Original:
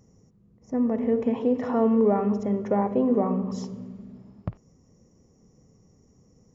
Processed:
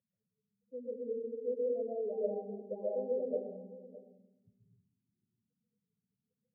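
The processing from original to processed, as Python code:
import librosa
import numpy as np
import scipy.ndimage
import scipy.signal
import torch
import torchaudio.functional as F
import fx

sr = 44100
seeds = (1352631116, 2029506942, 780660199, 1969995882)

p1 = fx.spec_topn(x, sr, count=4)
p2 = fx.vowel_filter(p1, sr, vowel='e')
p3 = p2 + fx.echo_single(p2, sr, ms=613, db=-17.5, dry=0)
p4 = fx.rev_freeverb(p3, sr, rt60_s=0.82, hf_ratio=0.85, predelay_ms=95, drr_db=-6.5)
y = p4 * 10.0 ** (-6.0 / 20.0)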